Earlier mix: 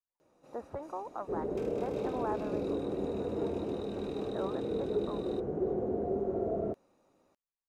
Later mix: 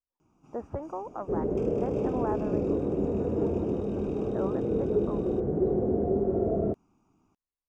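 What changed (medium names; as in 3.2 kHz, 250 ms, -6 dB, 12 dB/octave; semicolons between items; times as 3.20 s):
first sound: add static phaser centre 2.7 kHz, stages 8; master: add bass shelf 420 Hz +11 dB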